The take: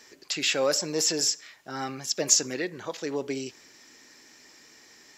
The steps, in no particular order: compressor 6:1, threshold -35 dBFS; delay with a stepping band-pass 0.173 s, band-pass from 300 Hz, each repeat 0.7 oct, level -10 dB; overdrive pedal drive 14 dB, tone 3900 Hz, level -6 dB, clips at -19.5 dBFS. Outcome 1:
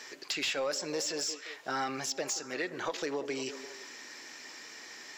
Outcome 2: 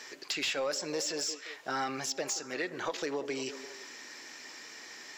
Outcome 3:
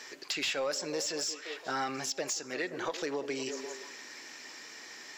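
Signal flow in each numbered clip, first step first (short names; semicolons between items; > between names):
compressor > delay with a stepping band-pass > overdrive pedal; compressor > overdrive pedal > delay with a stepping band-pass; delay with a stepping band-pass > compressor > overdrive pedal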